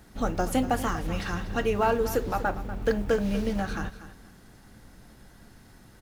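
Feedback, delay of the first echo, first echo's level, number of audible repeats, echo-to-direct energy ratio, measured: 24%, 242 ms, −14.0 dB, 2, −13.5 dB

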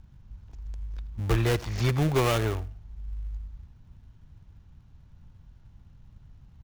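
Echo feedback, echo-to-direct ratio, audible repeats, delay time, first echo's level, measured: 24%, −20.5 dB, 2, 80 ms, −20.5 dB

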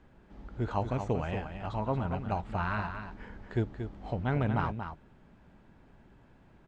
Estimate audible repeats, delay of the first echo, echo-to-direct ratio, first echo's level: 1, 231 ms, −8.0 dB, −8.0 dB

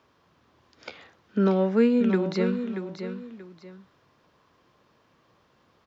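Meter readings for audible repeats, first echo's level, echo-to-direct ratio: 2, −9.0 dB, −8.5 dB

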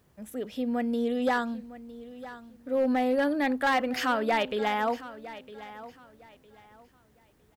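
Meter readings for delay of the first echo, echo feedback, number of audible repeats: 958 ms, 26%, 2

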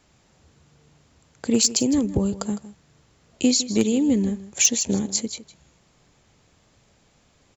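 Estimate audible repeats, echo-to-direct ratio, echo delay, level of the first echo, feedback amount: 1, −15.5 dB, 158 ms, −15.5 dB, repeats not evenly spaced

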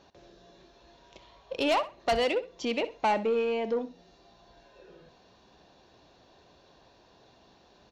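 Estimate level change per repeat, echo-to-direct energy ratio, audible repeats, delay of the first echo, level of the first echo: −13.5 dB, −15.0 dB, 2, 64 ms, −15.0 dB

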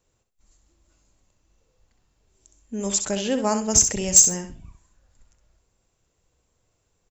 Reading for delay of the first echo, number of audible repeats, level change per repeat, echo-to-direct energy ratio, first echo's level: 65 ms, 3, −13.0 dB, −8.0 dB, −8.0 dB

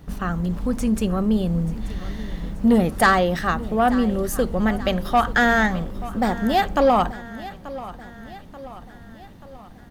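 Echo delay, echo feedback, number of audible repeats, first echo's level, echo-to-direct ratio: 884 ms, 53%, 4, −16.5 dB, −15.0 dB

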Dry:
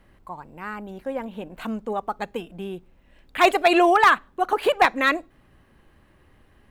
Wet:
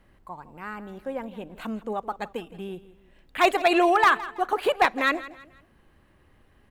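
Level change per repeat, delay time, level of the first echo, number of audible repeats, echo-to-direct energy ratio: −9.0 dB, 164 ms, −17.0 dB, 3, −16.5 dB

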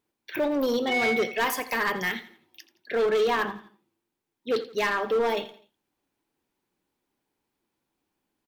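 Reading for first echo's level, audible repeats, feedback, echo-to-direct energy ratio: −16.0 dB, 3, 39%, −15.5 dB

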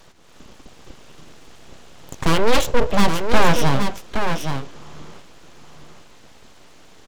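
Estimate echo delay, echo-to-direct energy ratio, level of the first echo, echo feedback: 820 ms, −6.5 dB, −6.5 dB, repeats not evenly spaced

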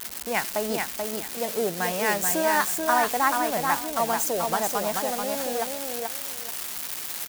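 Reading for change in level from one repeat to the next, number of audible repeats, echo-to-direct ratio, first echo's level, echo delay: −13.0 dB, 2, −4.0 dB, −4.0 dB, 434 ms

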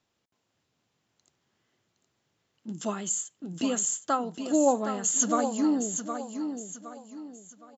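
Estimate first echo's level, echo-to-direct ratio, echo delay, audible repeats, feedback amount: −8.0 dB, −7.5 dB, 765 ms, 3, 35%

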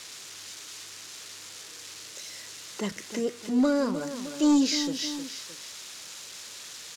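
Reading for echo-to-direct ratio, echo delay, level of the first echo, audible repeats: −10.0 dB, 309 ms, −11.0 dB, 2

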